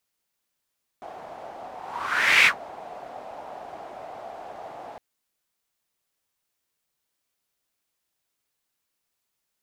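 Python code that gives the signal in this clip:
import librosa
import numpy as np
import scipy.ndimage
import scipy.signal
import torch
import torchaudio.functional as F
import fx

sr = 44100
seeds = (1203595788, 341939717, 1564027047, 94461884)

y = fx.whoosh(sr, seeds[0], length_s=3.96, peak_s=1.44, rise_s=0.75, fall_s=0.1, ends_hz=720.0, peak_hz=2300.0, q=4.4, swell_db=23.5)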